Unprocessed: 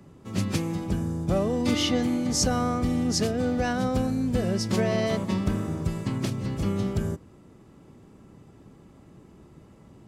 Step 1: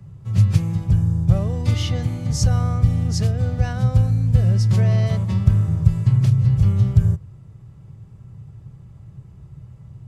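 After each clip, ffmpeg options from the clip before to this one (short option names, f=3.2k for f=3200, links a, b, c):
-af "lowshelf=f=180:t=q:w=3:g=13,volume=-3dB"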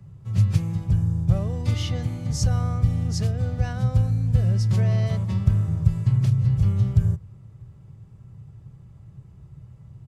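-filter_complex "[0:a]asplit=2[a][b];[b]adelay=641.4,volume=-29dB,highshelf=f=4k:g=-14.4[c];[a][c]amix=inputs=2:normalize=0,volume=-4dB"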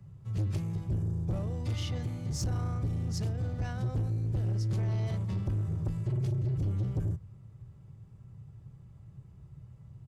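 -af "asoftclip=type=tanh:threshold=-21dB,volume=-5.5dB"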